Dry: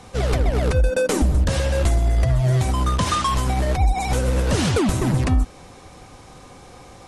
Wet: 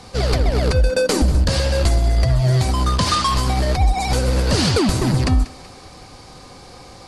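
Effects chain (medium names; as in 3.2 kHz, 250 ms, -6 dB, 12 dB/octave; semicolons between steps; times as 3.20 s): peaking EQ 4.6 kHz +12.5 dB 0.29 oct; thinning echo 189 ms, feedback 58%, level -17.5 dB; trim +2 dB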